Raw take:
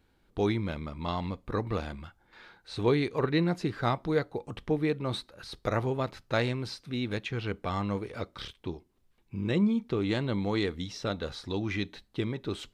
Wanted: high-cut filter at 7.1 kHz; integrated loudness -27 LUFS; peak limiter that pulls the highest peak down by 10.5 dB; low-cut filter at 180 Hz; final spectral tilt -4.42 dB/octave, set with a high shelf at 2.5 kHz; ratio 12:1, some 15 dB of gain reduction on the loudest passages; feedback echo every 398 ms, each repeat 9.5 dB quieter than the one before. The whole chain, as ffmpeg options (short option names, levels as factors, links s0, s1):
-af "highpass=180,lowpass=7100,highshelf=f=2500:g=8,acompressor=threshold=0.0158:ratio=12,alimiter=level_in=1.88:limit=0.0631:level=0:latency=1,volume=0.531,aecho=1:1:398|796|1194|1592:0.335|0.111|0.0365|0.012,volume=5.96"